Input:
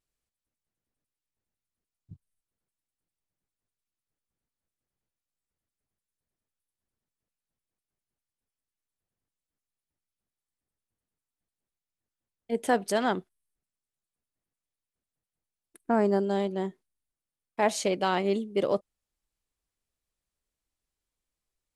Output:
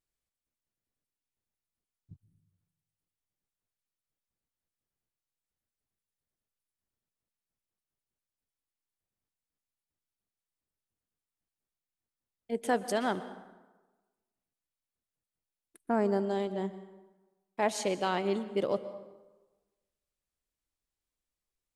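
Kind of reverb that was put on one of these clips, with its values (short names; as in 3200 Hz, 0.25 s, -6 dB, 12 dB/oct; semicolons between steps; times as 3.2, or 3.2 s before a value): plate-style reverb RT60 1.2 s, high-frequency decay 0.65×, pre-delay 0.11 s, DRR 13.5 dB; gain -4 dB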